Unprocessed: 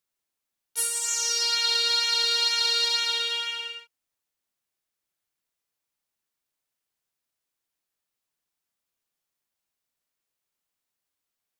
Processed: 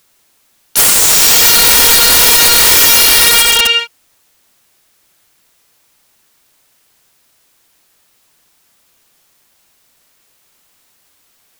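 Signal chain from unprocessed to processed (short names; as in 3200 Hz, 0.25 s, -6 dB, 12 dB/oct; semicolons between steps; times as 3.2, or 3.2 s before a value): 1.55–2.76 comb 2 ms, depth 80%; wrapped overs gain 26 dB; maximiser +30.5 dB; gain -1 dB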